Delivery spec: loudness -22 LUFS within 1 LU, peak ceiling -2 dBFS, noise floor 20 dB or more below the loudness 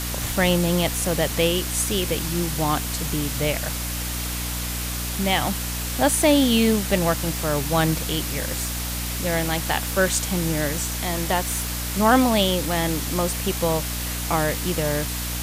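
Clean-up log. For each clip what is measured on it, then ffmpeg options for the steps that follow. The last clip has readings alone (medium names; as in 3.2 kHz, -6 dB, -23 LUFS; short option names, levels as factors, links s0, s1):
hum 60 Hz; highest harmonic 300 Hz; hum level -28 dBFS; noise floor -28 dBFS; noise floor target -43 dBFS; loudness -22.5 LUFS; peak level -5.0 dBFS; loudness target -22.0 LUFS
-> -af "bandreject=f=60:t=h:w=4,bandreject=f=120:t=h:w=4,bandreject=f=180:t=h:w=4,bandreject=f=240:t=h:w=4,bandreject=f=300:t=h:w=4"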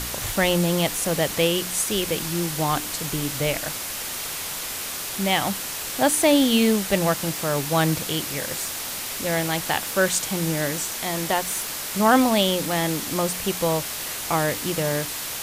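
hum not found; noise floor -31 dBFS; noise floor target -43 dBFS
-> -af "afftdn=nr=12:nf=-31"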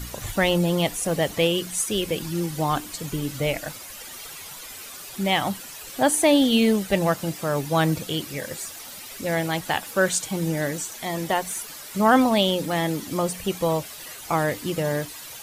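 noise floor -40 dBFS; noise floor target -44 dBFS
-> -af "afftdn=nr=6:nf=-40"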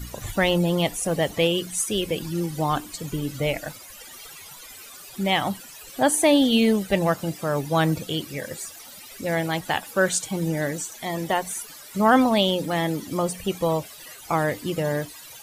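noise floor -43 dBFS; noise floor target -44 dBFS
-> -af "afftdn=nr=6:nf=-43"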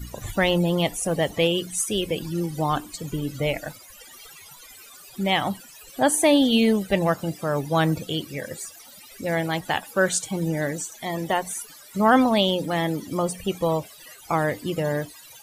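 noise floor -47 dBFS; loudness -24.0 LUFS; peak level -6.0 dBFS; loudness target -22.0 LUFS
-> -af "volume=1.26"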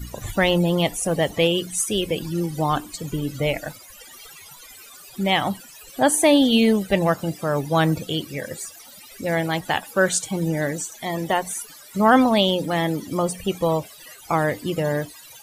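loudness -22.0 LUFS; peak level -4.0 dBFS; noise floor -45 dBFS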